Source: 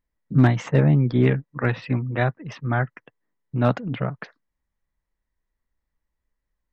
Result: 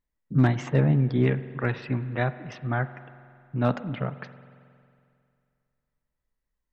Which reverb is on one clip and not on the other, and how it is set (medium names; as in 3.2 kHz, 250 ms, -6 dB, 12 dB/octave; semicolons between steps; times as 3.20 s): spring tank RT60 2.4 s, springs 45 ms, chirp 55 ms, DRR 13.5 dB; trim -4 dB